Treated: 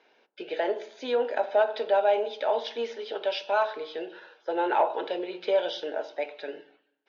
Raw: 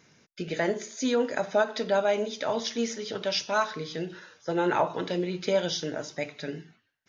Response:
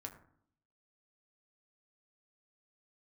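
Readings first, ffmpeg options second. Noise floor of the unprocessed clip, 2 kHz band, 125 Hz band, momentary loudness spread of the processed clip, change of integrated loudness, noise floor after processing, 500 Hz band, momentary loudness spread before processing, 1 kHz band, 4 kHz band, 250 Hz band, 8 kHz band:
-70 dBFS, -2.5 dB, under -25 dB, 13 LU, +0.5 dB, -70 dBFS, +1.5 dB, 10 LU, +3.0 dB, -3.5 dB, -8.0 dB, no reading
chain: -filter_complex "[0:a]asoftclip=type=tanh:threshold=0.15,highpass=f=390:w=0.5412,highpass=f=390:w=1.3066,equalizer=f=810:t=q:w=4:g=5,equalizer=f=1200:t=q:w=4:g=-8,equalizer=f=2000:t=q:w=4:g=-8,lowpass=f=3400:w=0.5412,lowpass=f=3400:w=1.3066,asplit=2[s0][s1];[1:a]atrim=start_sample=2205,asetrate=37485,aresample=44100[s2];[s1][s2]afir=irnorm=-1:irlink=0,volume=0.631[s3];[s0][s3]amix=inputs=2:normalize=0"

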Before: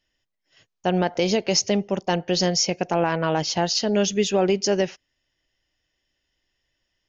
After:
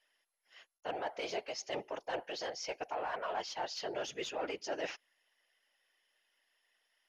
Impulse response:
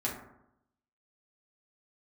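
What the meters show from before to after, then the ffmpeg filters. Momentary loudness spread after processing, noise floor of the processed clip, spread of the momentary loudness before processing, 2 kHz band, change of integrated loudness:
3 LU, -85 dBFS, 4 LU, -12.0 dB, -17.5 dB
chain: -filter_complex "[0:a]highpass=600,areverse,acompressor=threshold=0.02:ratio=8,areverse,asplit=2[s0][s1];[s1]highpass=f=720:p=1,volume=3.98,asoftclip=type=tanh:threshold=0.0708[s2];[s0][s2]amix=inputs=2:normalize=0,lowpass=f=1600:p=1,volume=0.501,afftfilt=real='hypot(re,im)*cos(2*PI*random(0))':imag='hypot(re,im)*sin(2*PI*random(1))':win_size=512:overlap=0.75,volume=1.58" -ar 44100 -c:a mp2 -b:a 192k

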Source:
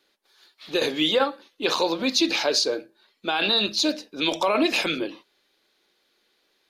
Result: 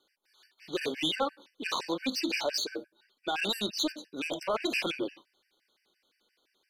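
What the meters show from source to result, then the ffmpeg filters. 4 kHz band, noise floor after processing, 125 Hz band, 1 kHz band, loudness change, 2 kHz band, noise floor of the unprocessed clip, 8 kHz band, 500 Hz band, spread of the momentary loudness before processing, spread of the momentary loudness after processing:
-9.5 dB, -77 dBFS, -7.0 dB, -8.0 dB, -9.0 dB, -7.5 dB, -69 dBFS, -8.0 dB, -9.5 dB, 8 LU, 8 LU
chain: -af "asoftclip=type=tanh:threshold=0.119,afftfilt=real='re*gt(sin(2*PI*5.8*pts/sr)*(1-2*mod(floor(b*sr/1024/1500),2)),0)':imag='im*gt(sin(2*PI*5.8*pts/sr)*(1-2*mod(floor(b*sr/1024/1500),2)),0)':win_size=1024:overlap=0.75,volume=0.708"

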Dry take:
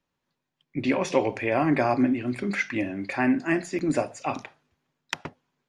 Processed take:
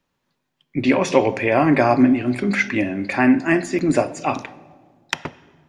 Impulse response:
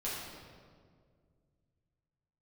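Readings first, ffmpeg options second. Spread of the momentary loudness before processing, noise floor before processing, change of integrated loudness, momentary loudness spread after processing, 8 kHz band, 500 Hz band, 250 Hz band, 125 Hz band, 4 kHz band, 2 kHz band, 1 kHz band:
12 LU, -83 dBFS, +7.0 dB, 13 LU, +6.5 dB, +7.0 dB, +7.5 dB, +7.0 dB, +7.0 dB, +7.0 dB, +7.0 dB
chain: -filter_complex "[0:a]asplit=2[s0][s1];[1:a]atrim=start_sample=2205,asetrate=57330,aresample=44100,lowpass=6000[s2];[s1][s2]afir=irnorm=-1:irlink=0,volume=0.15[s3];[s0][s3]amix=inputs=2:normalize=0,volume=2.11"

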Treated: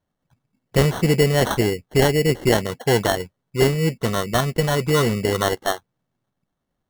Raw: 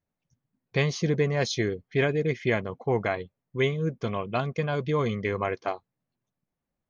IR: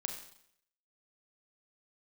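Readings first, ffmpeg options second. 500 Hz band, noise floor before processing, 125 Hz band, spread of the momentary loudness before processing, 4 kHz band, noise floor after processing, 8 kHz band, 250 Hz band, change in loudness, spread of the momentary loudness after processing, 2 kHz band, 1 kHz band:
+7.5 dB, under -85 dBFS, +7.5 dB, 7 LU, +11.0 dB, -79 dBFS, no reading, +8.0 dB, +7.5 dB, 6 LU, +5.5 dB, +8.0 dB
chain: -af "acrusher=samples=18:mix=1:aa=0.000001,volume=2.37"

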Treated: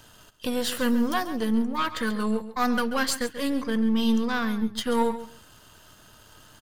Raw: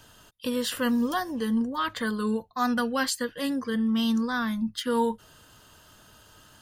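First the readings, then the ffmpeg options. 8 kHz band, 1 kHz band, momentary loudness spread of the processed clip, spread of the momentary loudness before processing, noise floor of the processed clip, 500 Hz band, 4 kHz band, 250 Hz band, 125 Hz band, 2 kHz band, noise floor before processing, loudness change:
+1.5 dB, +1.5 dB, 5 LU, 5 LU, -53 dBFS, +1.5 dB, +1.0 dB, +1.5 dB, no reading, +1.5 dB, -56 dBFS, +1.5 dB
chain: -filter_complex "[0:a]aeval=exprs='if(lt(val(0),0),0.447*val(0),val(0))':c=same,asplit=2[s0][s1];[s1]aecho=0:1:136|272:0.224|0.0358[s2];[s0][s2]amix=inputs=2:normalize=0,volume=1.58"

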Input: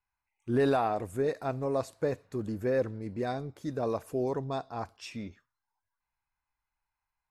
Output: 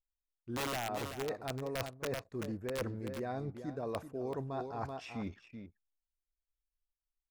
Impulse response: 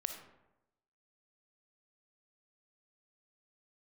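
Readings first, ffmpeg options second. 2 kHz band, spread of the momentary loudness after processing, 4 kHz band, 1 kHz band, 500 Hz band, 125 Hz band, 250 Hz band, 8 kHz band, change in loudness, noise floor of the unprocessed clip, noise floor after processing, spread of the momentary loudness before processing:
-2.5 dB, 7 LU, +2.0 dB, -6.5 dB, -9.0 dB, -5.5 dB, -7.0 dB, +4.0 dB, -7.5 dB, under -85 dBFS, under -85 dBFS, 13 LU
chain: -filter_complex "[0:a]acrossover=split=2500[s0][s1];[s1]acompressor=threshold=0.00126:ratio=4:attack=1:release=60[s2];[s0][s2]amix=inputs=2:normalize=0,aeval=exprs='(mod(10.6*val(0)+1,2)-1)/10.6':c=same,aecho=1:1:383:0.251,areverse,acompressor=threshold=0.0112:ratio=6,areverse,anlmdn=0.00001,volume=1.41"

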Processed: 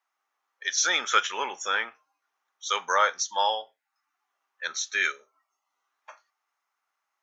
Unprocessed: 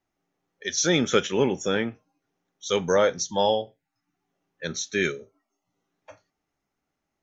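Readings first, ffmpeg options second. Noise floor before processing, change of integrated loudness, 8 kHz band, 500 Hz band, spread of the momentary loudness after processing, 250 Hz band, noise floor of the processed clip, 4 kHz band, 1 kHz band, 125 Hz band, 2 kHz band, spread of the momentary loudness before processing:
-83 dBFS, -1.5 dB, no reading, -11.5 dB, 12 LU, under -20 dB, -83 dBFS, +1.0 dB, +4.0 dB, under -30 dB, +3.5 dB, 14 LU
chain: -af "highpass=f=1100:t=q:w=2.5"

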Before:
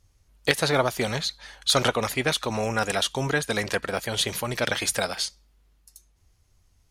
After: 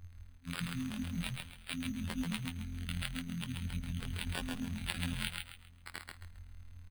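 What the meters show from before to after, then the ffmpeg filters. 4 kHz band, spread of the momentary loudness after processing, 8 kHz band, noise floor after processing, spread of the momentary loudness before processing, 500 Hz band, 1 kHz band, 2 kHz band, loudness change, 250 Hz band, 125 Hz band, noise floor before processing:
-16.0 dB, 14 LU, -18.0 dB, -57 dBFS, 6 LU, -29.5 dB, -21.0 dB, -16.0 dB, -14.5 dB, -6.5 dB, -7.0 dB, -64 dBFS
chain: -filter_complex "[0:a]afftfilt=real='re*(1-between(b*sr/4096,260,7600))':imag='im*(1-between(b*sr/4096,260,7600))':win_size=4096:overlap=0.75,highshelf=f=3300:g=-5,acontrast=79,equalizer=f=160:t=o:w=0.67:g=-7,equalizer=f=1000:t=o:w=0.67:g=3,equalizer=f=6300:t=o:w=0.67:g=-9,areverse,acompressor=threshold=0.00794:ratio=6,areverse,afftfilt=real='hypot(re,im)*cos(PI*b)':imag='0':win_size=2048:overlap=0.75,acrusher=samples=7:mix=1:aa=0.000001,asplit=2[s0][s1];[s1]asplit=4[s2][s3][s4][s5];[s2]adelay=134,afreqshift=-44,volume=0.631[s6];[s3]adelay=268,afreqshift=-88,volume=0.195[s7];[s4]adelay=402,afreqshift=-132,volume=0.061[s8];[s5]adelay=536,afreqshift=-176,volume=0.0188[s9];[s6][s7][s8][s9]amix=inputs=4:normalize=0[s10];[s0][s10]amix=inputs=2:normalize=0,volume=2.82"

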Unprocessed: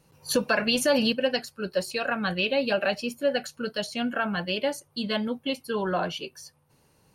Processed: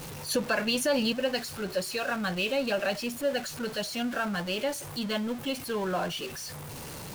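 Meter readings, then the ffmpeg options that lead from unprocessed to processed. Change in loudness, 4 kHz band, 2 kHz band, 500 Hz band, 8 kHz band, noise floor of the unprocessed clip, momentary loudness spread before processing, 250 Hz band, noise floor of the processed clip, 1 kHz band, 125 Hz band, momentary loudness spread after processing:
-3.0 dB, -2.5 dB, -3.0 dB, -3.5 dB, +0.5 dB, -65 dBFS, 9 LU, -2.5 dB, -41 dBFS, -3.0 dB, -1.0 dB, 8 LU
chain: -af "aeval=exprs='val(0)+0.5*0.0316*sgn(val(0))':c=same,volume=0.562"

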